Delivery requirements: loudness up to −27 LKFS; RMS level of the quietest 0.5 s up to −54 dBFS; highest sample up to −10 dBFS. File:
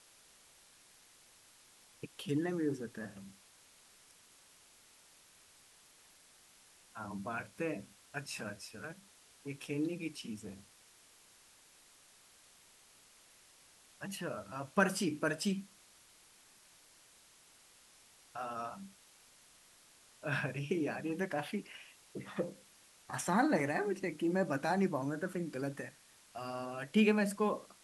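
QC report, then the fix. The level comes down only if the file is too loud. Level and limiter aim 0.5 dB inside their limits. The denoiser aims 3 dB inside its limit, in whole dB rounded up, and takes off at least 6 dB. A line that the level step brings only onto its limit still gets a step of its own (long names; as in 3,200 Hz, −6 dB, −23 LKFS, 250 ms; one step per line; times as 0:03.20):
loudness −37.0 LKFS: in spec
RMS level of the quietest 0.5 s −63 dBFS: in spec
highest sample −14.0 dBFS: in spec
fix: no processing needed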